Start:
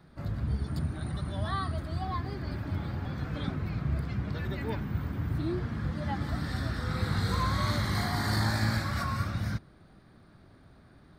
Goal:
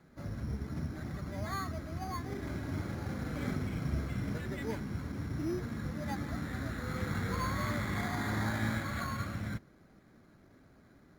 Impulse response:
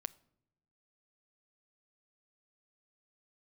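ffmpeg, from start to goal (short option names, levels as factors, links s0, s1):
-filter_complex "[0:a]lowpass=2800,bandreject=f=1800:w=14,asettb=1/sr,asplit=3[s0][s1][s2];[s0]atrim=end=2.264[s3];[s1]atrim=start=2.26:end=4.38,asetpts=PTS-STARTPTS,afade=t=in:d=0.004:c=qsin,afade=t=out:st=2.116:d=0.004:c=qsin,aecho=1:1:40|84|132.4|185.6|244.2:0.631|0.398|0.251|0.158|0.1,atrim=end_sample=93492[s4];[s2]atrim=start=4.376[s5];[s3][s4]acrossfade=d=0.004:c1=hsin:c2=qsin[s6];[s6][s5]acrossfade=d=0.004:c1=qsin:c2=hsin,acrusher=samples=8:mix=1:aa=0.000001,equalizer=f=250:t=o:w=1:g=6,equalizer=f=500:t=o:w=1:g=5,equalizer=f=2000:t=o:w=1:g=10,volume=0.398" -ar 48000 -c:a libopus -b:a 64k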